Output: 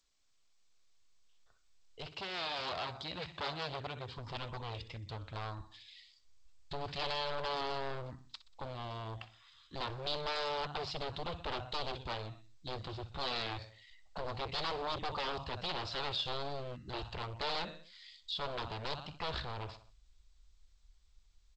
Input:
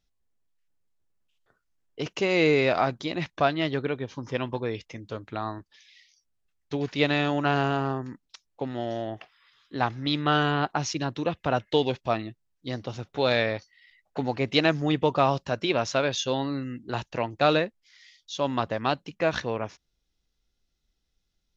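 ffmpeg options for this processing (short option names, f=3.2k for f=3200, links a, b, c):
-filter_complex "[0:a]asubboost=boost=9.5:cutoff=140,aecho=1:1:62|124|186|248:0.15|0.0688|0.0317|0.0146,aeval=exprs='0.0668*(abs(mod(val(0)/0.0668+3,4)-2)-1)':c=same,alimiter=level_in=4.5dB:limit=-24dB:level=0:latency=1:release=17,volume=-4.5dB,aresample=11025,aresample=44100,asettb=1/sr,asplit=3[a][b][c];[a]atrim=end=2.114[d];[b]atrim=start=2.11:end=4.18,asetpts=PTS-STARTPTS,afade=t=in:d=0.004:c=qsin,afade=t=out:st=2.066:d=0.004:c=qsin,highpass=74[e];[c]atrim=start=4.176[f];[d][e]acrossfade=d=0.004:c1=hsin:c2=qsin[g];[g][f]acrossfade=d=0.004:c1=qsin:c2=hsin,dynaudnorm=f=750:g=7:m=4dB,equalizer=f=125:t=o:w=1:g=-9,equalizer=f=250:t=o:w=1:g=-10,equalizer=f=1k:t=o:w=1:g=4,equalizer=f=2k:t=o:w=1:g=-5,equalizer=f=4k:t=o:w=1:g=6,volume=-6.5dB" -ar 16000 -c:a g722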